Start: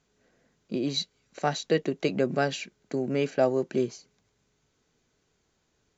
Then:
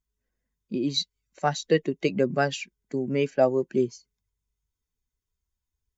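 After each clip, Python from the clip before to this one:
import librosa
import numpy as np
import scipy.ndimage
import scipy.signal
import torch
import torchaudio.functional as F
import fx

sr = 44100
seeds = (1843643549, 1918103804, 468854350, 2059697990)

y = fx.bin_expand(x, sr, power=1.5)
y = y * 10.0 ** (4.0 / 20.0)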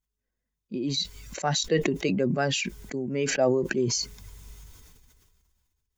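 y = fx.sustainer(x, sr, db_per_s=27.0)
y = y * 10.0 ** (-3.5 / 20.0)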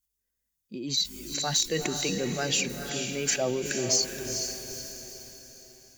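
y = librosa.effects.preemphasis(x, coef=0.8, zi=[0.0])
y = fx.fold_sine(y, sr, drive_db=4, ceiling_db=-17.0)
y = fx.echo_diffused(y, sr, ms=454, feedback_pct=45, wet_db=-6.0)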